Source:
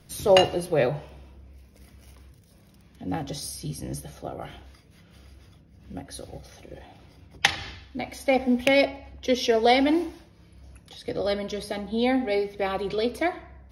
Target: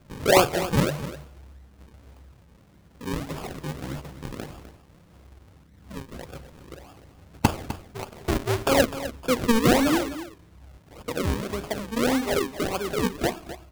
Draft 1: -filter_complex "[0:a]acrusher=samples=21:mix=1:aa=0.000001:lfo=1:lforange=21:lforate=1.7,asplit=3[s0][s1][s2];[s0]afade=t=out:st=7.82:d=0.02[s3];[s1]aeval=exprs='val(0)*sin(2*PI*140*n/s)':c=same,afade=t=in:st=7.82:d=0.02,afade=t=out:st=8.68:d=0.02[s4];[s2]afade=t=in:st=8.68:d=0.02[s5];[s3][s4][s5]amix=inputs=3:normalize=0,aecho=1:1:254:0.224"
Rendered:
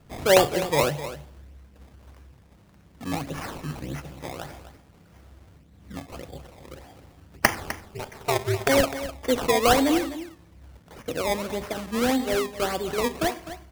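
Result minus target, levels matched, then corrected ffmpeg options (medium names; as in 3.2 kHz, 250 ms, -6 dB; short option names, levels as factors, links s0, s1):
decimation with a swept rate: distortion -10 dB
-filter_complex "[0:a]acrusher=samples=44:mix=1:aa=0.000001:lfo=1:lforange=44:lforate=1.7,asplit=3[s0][s1][s2];[s0]afade=t=out:st=7.82:d=0.02[s3];[s1]aeval=exprs='val(0)*sin(2*PI*140*n/s)':c=same,afade=t=in:st=7.82:d=0.02,afade=t=out:st=8.68:d=0.02[s4];[s2]afade=t=in:st=8.68:d=0.02[s5];[s3][s4][s5]amix=inputs=3:normalize=0,aecho=1:1:254:0.224"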